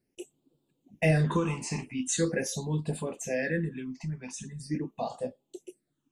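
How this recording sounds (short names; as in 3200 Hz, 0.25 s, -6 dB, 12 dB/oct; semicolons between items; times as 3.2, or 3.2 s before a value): phasing stages 8, 0.43 Hz, lowest notch 470–1900 Hz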